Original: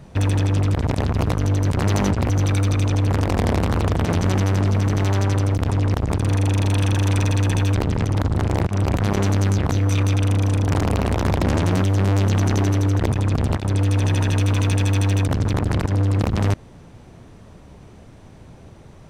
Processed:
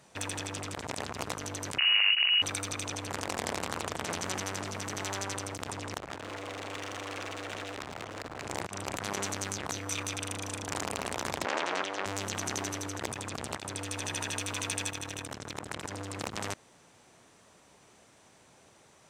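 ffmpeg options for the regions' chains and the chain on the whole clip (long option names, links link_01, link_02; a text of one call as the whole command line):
ffmpeg -i in.wav -filter_complex "[0:a]asettb=1/sr,asplit=3[link_01][link_02][link_03];[link_01]atrim=end=1.784[link_04];[link_02]atrim=start=1.78:end=2.42,asetpts=PTS-STARTPTS,afade=type=in:duration=0.004:curve=qsin,afade=type=out:start_time=0.636:duration=0.004:curve=qsin,highpass=76,lowpass=frequency=2600:width_type=q:width=0.5098,lowpass=frequency=2600:width_type=q:width=0.6013,lowpass=frequency=2600:width_type=q:width=0.9,lowpass=frequency=2600:width_type=q:width=2.563,afreqshift=-3000[link_05];[link_03]atrim=start=2.416[link_06];[link_04][link_05]acrossfade=duration=0.004:curve1=hsin:curve2=qsin[link_07];[link_07][link_06]acrossfade=duration=0.004:curve1=qsin:curve2=hsin,asettb=1/sr,asplit=3[link_08][link_09][link_10];[link_08]atrim=end=5.984[link_11];[link_09]atrim=start=5.98:end=8.45,asetpts=PTS-STARTPTS,afade=type=in:duration=0.004:curve=qsin,afade=type=out:start_time=2.466:duration=0.004:curve=qsin,lowpass=2500,aeval=exprs='0.119*(abs(mod(val(0)/0.119+3,4)-2)-1)':channel_layout=same[link_12];[link_10]atrim=start=8.446[link_13];[link_11][link_12]acrossfade=duration=0.004:curve1=hsin:curve2=qsin[link_14];[link_14][link_13]acrossfade=duration=0.004:curve1=qsin:curve2=hsin,asettb=1/sr,asplit=3[link_15][link_16][link_17];[link_15]atrim=end=11.454[link_18];[link_16]atrim=start=11.45:end=12.06,asetpts=PTS-STARTPTS,afade=type=in:duration=0.004:curve=qsin,afade=type=out:start_time=0.606:duration=0.004:curve=qsin,highpass=420,lowpass=3500,acontrast=37[link_19];[link_17]atrim=start=12.056[link_20];[link_18][link_19]acrossfade=duration=0.004:curve1=hsin:curve2=qsin[link_21];[link_21][link_20]acrossfade=duration=0.004:curve1=qsin:curve2=hsin,asettb=1/sr,asplit=3[link_22][link_23][link_24];[link_22]atrim=end=14.904[link_25];[link_23]atrim=start=14.9:end=15.83,asetpts=PTS-STARTPTS,afade=type=in:duration=0.004:curve=qsin,afade=type=out:start_time=0.926:duration=0.004:curve=qsin,bandreject=frequency=4600:width=16,tremolo=f=38:d=0.75[link_26];[link_24]atrim=start=15.826[link_27];[link_25][link_26]acrossfade=duration=0.004:curve1=hsin:curve2=qsin[link_28];[link_28][link_27]acrossfade=duration=0.004:curve1=qsin:curve2=hsin,highpass=frequency=1100:poles=1,equalizer=frequency=7700:width=1.4:gain=7.5,volume=-5dB" out.wav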